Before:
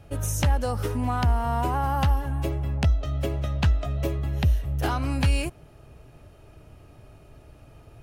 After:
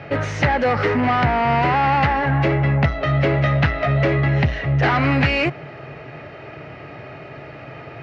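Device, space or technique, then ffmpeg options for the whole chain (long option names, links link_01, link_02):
overdrive pedal into a guitar cabinet: -filter_complex "[0:a]asplit=2[link_01][link_02];[link_02]highpass=frequency=720:poles=1,volume=26dB,asoftclip=type=tanh:threshold=-12dB[link_03];[link_01][link_03]amix=inputs=2:normalize=0,lowpass=frequency=2200:poles=1,volume=-6dB,highpass=83,equalizer=frequency=140:width_type=q:width=4:gain=9,equalizer=frequency=1000:width_type=q:width=4:gain=-4,equalizer=frequency=2000:width_type=q:width=4:gain=10,equalizer=frequency=3400:width_type=q:width=4:gain=-5,lowpass=frequency=4500:width=0.5412,lowpass=frequency=4500:width=1.3066,volume=2.5dB"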